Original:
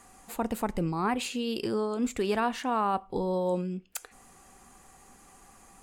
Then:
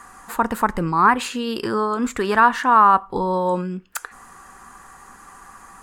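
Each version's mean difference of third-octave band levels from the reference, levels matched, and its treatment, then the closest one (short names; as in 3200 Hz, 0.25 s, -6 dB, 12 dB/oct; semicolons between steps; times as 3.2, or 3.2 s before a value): 4.0 dB: band shelf 1300 Hz +11.5 dB 1.2 oct; gain +6 dB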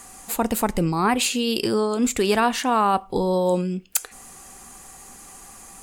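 2.5 dB: high shelf 3700 Hz +9 dB; gain +7.5 dB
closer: second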